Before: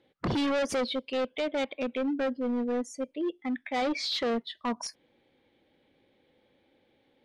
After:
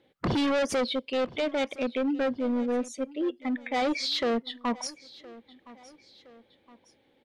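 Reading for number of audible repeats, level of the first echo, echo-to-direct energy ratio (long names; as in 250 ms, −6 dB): 2, −20.5 dB, −19.5 dB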